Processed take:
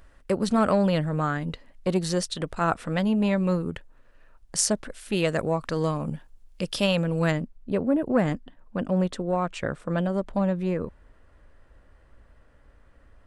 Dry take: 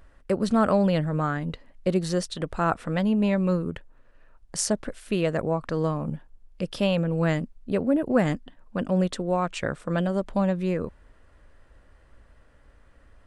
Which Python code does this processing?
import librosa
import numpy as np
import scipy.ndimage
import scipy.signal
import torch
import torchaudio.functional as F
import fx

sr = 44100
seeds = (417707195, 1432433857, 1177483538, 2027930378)

y = fx.high_shelf(x, sr, hz=2400.0, db=fx.steps((0.0, 4.5), (5.15, 10.0), (7.3, -4.0)))
y = fx.transformer_sat(y, sr, knee_hz=490.0)